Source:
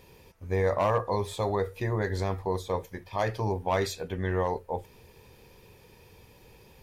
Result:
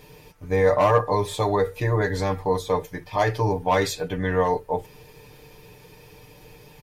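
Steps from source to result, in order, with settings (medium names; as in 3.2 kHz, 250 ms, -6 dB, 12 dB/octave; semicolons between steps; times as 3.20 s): comb 6.7 ms, depth 74%; trim +5 dB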